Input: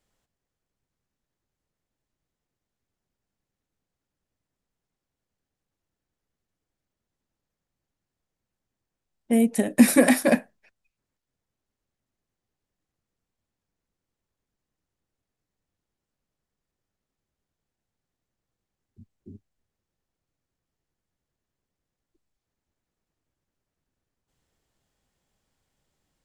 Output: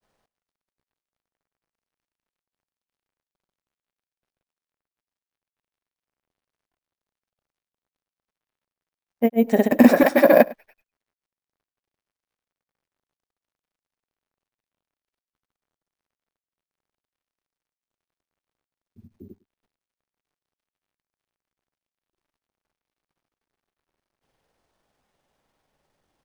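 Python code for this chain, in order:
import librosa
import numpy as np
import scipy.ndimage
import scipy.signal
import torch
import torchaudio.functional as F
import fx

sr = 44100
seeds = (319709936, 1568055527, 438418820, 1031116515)

p1 = fx.peak_eq(x, sr, hz=730.0, db=11.0, octaves=2.7)
p2 = fx.quant_dither(p1, sr, seeds[0], bits=12, dither='none')
p3 = fx.granulator(p2, sr, seeds[1], grain_ms=100.0, per_s=20.0, spray_ms=100.0, spread_st=0)
p4 = np.repeat(scipy.signal.resample_poly(p3, 1, 3), 3)[:len(p3)]
p5 = p4 + fx.echo_single(p4, sr, ms=104, db=-22.5, dry=0)
y = F.gain(torch.from_numpy(p5), -1.0).numpy()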